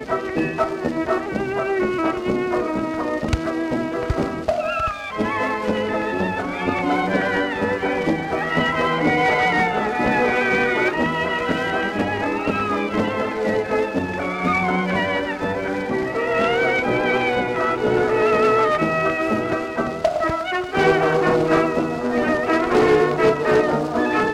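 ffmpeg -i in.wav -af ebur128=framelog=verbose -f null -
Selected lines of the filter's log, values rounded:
Integrated loudness:
  I:         -20.3 LUFS
  Threshold: -30.3 LUFS
Loudness range:
  LRA:         4.2 LU
  Threshold: -40.4 LUFS
  LRA low:   -22.7 LUFS
  LRA high:  -18.6 LUFS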